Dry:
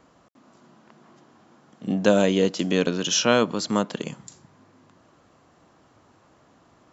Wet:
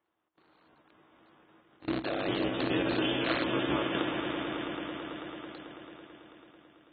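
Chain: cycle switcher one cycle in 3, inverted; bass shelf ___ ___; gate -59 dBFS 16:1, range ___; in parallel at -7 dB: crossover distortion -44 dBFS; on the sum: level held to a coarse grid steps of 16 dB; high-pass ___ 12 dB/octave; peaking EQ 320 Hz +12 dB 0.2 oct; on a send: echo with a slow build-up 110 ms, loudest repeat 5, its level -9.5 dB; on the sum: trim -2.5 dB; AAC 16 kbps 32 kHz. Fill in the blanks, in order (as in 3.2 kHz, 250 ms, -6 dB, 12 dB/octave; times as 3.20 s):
490 Hz, -11 dB, -14 dB, 55 Hz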